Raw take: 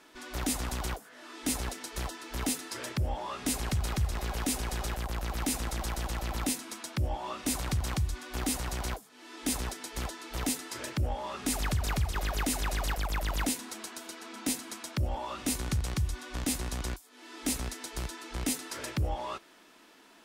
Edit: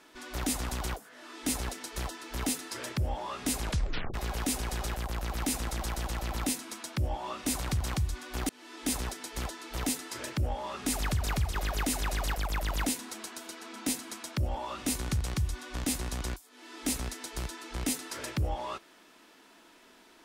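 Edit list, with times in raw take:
0:03.62: tape stop 0.52 s
0:08.49–0:09.09: remove

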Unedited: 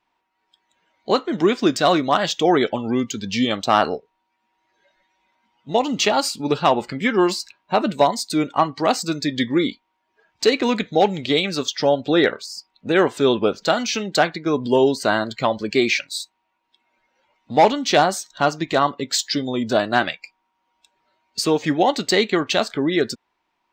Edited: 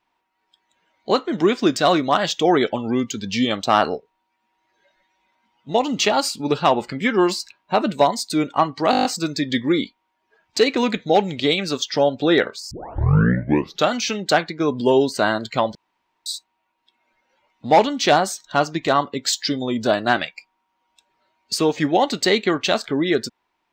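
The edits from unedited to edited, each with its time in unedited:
0:08.91: stutter 0.02 s, 8 plays
0:12.57: tape start 1.20 s
0:15.61–0:16.12: fill with room tone

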